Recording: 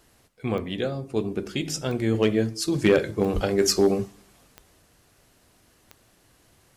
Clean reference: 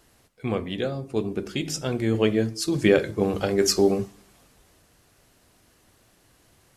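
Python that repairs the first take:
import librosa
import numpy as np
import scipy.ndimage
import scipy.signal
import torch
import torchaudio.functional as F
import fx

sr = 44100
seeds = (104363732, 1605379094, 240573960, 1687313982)

y = fx.fix_declip(x, sr, threshold_db=-10.5)
y = fx.fix_declick_ar(y, sr, threshold=10.0)
y = fx.fix_deplosive(y, sr, at_s=(3.34,))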